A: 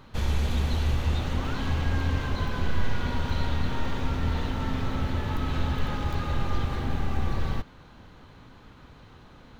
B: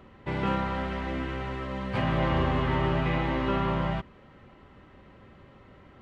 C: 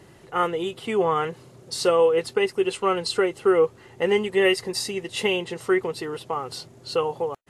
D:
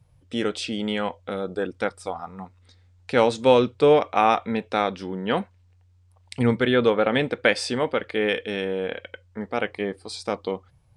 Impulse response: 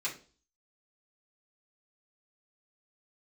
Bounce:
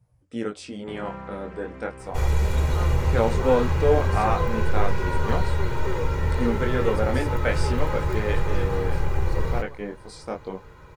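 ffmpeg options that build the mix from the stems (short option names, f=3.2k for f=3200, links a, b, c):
-filter_complex "[0:a]aecho=1:1:2.1:0.7,adelay=2000,volume=0.5dB,asplit=2[a][b];[b]volume=-5dB[c];[1:a]adelay=600,volume=-10dB,asplit=2[d][e];[e]volume=-9dB[f];[2:a]adelay=2400,volume=-14dB[g];[3:a]flanger=delay=16.5:depth=7.3:speed=0.35,volume=-1.5dB[h];[4:a]atrim=start_sample=2205[i];[c][f]amix=inputs=2:normalize=0[j];[j][i]afir=irnorm=-1:irlink=0[k];[a][d][g][h][k]amix=inputs=5:normalize=0,equalizer=f=3.4k:t=o:w=1:g=-10"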